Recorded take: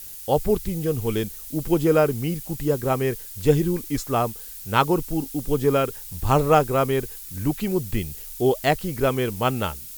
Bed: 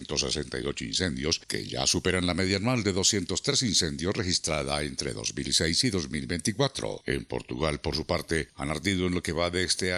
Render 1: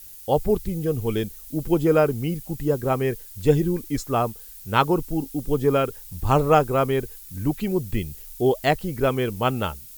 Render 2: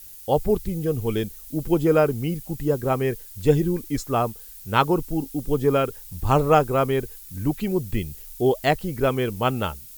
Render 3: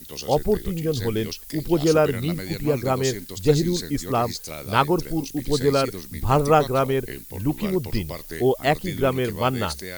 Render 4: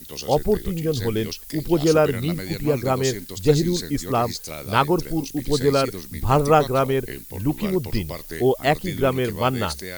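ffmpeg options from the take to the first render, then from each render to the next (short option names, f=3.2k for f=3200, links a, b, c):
-af "afftdn=nr=6:nf=-39"
-af anull
-filter_complex "[1:a]volume=-7dB[a];[0:a][a]amix=inputs=2:normalize=0"
-af "volume=1dB,alimiter=limit=-3dB:level=0:latency=1"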